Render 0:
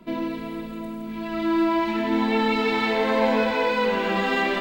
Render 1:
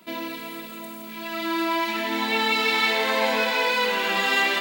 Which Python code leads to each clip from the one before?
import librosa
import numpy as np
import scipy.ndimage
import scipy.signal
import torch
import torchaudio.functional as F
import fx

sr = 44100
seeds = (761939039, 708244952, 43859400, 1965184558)

y = fx.tilt_eq(x, sr, slope=4.0)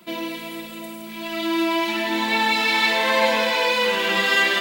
y = x + 0.52 * np.pad(x, (int(5.7 * sr / 1000.0), 0))[:len(x)]
y = F.gain(torch.from_numpy(y), 2.0).numpy()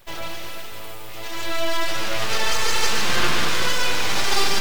y = np.abs(x)
y = fx.echo_split(y, sr, split_hz=760.0, low_ms=104, high_ms=147, feedback_pct=52, wet_db=-6)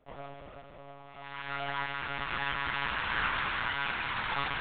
y = fx.filter_sweep_bandpass(x, sr, from_hz=490.0, to_hz=1400.0, start_s=0.82, end_s=1.37, q=1.1)
y = fx.lpc_monotone(y, sr, seeds[0], pitch_hz=140.0, order=10)
y = F.gain(torch.from_numpy(y), -5.0).numpy()